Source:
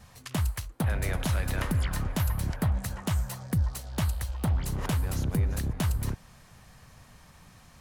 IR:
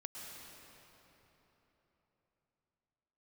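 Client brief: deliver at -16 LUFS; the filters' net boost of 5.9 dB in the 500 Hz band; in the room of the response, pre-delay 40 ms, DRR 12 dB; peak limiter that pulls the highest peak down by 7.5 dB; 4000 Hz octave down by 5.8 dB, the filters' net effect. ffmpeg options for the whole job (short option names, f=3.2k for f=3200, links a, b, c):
-filter_complex "[0:a]equalizer=f=500:t=o:g=7.5,equalizer=f=4k:t=o:g=-8,alimiter=limit=-22dB:level=0:latency=1,asplit=2[a][b];[1:a]atrim=start_sample=2205,adelay=40[c];[b][c]afir=irnorm=-1:irlink=0,volume=-10dB[d];[a][d]amix=inputs=2:normalize=0,volume=16dB"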